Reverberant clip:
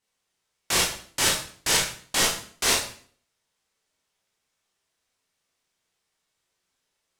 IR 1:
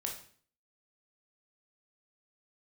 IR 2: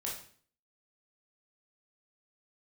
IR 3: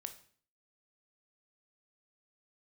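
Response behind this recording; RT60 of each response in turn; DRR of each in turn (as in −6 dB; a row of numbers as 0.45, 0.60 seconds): 2; 0.50, 0.50, 0.50 seconds; 0.5, −4.0, 7.5 decibels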